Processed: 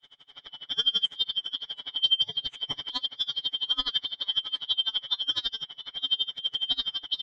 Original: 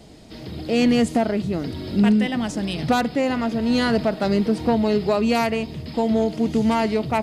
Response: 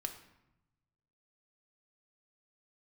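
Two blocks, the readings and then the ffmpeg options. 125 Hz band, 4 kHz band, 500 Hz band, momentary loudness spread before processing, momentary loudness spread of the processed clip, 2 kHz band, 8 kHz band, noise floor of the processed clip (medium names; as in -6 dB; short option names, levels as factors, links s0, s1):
under -25 dB, +10.0 dB, -34.0 dB, 8 LU, 9 LU, -18.0 dB, under -15 dB, -62 dBFS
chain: -filter_complex "[0:a]afftfilt=real='real(if(lt(b,272),68*(eq(floor(b/68),0)*2+eq(floor(b/68),1)*3+eq(floor(b/68),2)*0+eq(floor(b/68),3)*1)+mod(b,68),b),0)':imag='imag(if(lt(b,272),68*(eq(floor(b/68),0)*2+eq(floor(b/68),1)*3+eq(floor(b/68),2)*0+eq(floor(b/68),3)*1)+mod(b,68),b),0)':win_size=2048:overlap=0.75,lowpass=3600,bandreject=f=60:t=h:w=6,bandreject=f=120:t=h:w=6,bandreject=f=180:t=h:w=6,bandreject=f=240:t=h:w=6,bandreject=f=300:t=h:w=6,bandreject=f=360:t=h:w=6,aecho=1:1:7:0.95,acrossover=split=140[s0][s1];[s0]acrusher=bits=3:mode=log:mix=0:aa=0.000001[s2];[s1]aecho=1:1:700:0.188[s3];[s2][s3]amix=inputs=2:normalize=0,aeval=exprs='val(0)*pow(10,-28*(0.5-0.5*cos(2*PI*12*n/s))/20)':c=same,volume=0.531"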